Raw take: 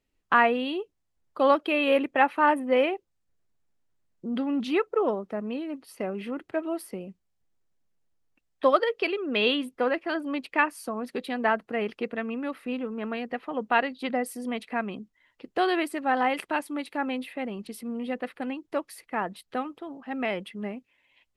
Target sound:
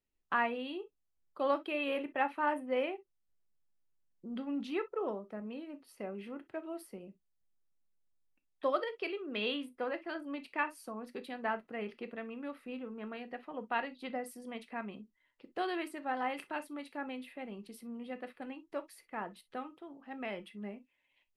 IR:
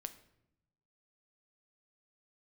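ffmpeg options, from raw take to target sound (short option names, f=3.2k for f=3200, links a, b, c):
-filter_complex "[1:a]atrim=start_sample=2205,atrim=end_sample=3969,asetrate=57330,aresample=44100[a];[0:a][a]afir=irnorm=-1:irlink=0,volume=-5dB"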